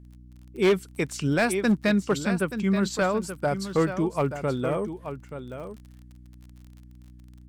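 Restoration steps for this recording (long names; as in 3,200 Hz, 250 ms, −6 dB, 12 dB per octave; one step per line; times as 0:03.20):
clipped peaks rebuilt −15.5 dBFS
click removal
hum removal 61.2 Hz, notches 5
echo removal 879 ms −10.5 dB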